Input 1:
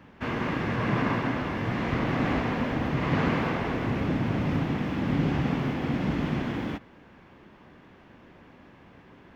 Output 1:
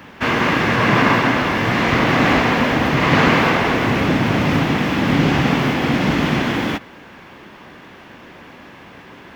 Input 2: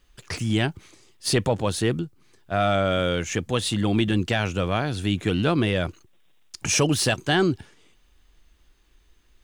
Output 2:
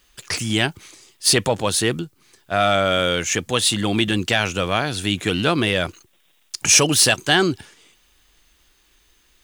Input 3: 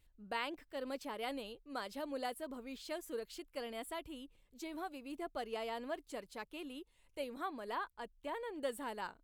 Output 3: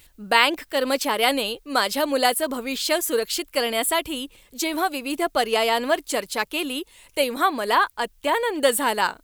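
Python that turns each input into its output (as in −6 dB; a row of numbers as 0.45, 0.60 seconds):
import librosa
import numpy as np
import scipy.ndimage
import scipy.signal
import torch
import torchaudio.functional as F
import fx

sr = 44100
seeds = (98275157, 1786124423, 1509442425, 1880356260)

y = fx.tilt_eq(x, sr, slope=2.0)
y = y * 10.0 ** (-1.5 / 20.0) / np.max(np.abs(y))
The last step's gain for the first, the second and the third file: +14.0, +5.0, +21.0 decibels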